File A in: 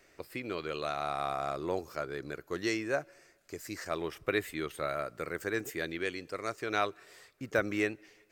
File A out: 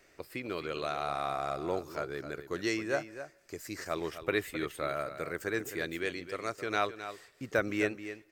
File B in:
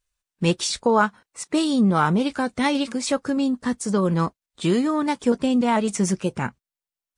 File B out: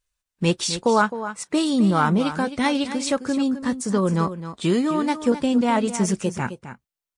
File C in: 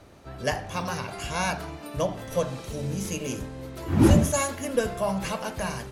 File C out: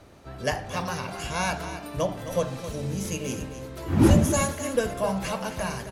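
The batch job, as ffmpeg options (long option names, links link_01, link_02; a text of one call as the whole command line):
ffmpeg -i in.wav -af "aecho=1:1:262:0.266" out.wav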